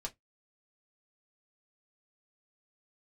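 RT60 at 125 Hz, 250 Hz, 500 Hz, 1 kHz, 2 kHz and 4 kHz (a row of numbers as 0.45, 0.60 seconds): 0.20, 0.15, 0.15, 0.10, 0.15, 0.10 seconds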